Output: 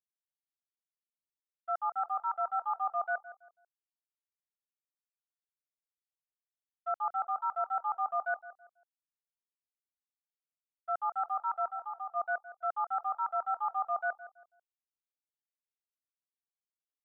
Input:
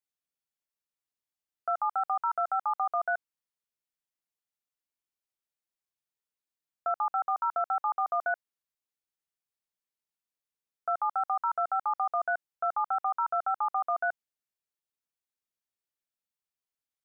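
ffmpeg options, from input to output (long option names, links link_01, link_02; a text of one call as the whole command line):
ffmpeg -i in.wav -filter_complex "[0:a]agate=range=-33dB:threshold=-23dB:ratio=3:detection=peak,asplit=3[link_01][link_02][link_03];[link_01]afade=type=out:start_time=11.68:duration=0.02[link_04];[link_02]acompressor=threshold=-38dB:ratio=5,afade=type=in:start_time=11.68:duration=0.02,afade=type=out:start_time=12.15:duration=0.02[link_05];[link_03]afade=type=in:start_time=12.15:duration=0.02[link_06];[link_04][link_05][link_06]amix=inputs=3:normalize=0,asplit=2[link_07][link_08];[link_08]adelay=164,lowpass=frequency=1500:poles=1,volume=-14dB,asplit=2[link_09][link_10];[link_10]adelay=164,lowpass=frequency=1500:poles=1,volume=0.35,asplit=2[link_11][link_12];[link_12]adelay=164,lowpass=frequency=1500:poles=1,volume=0.35[link_13];[link_07][link_09][link_11][link_13]amix=inputs=4:normalize=0,volume=1dB" out.wav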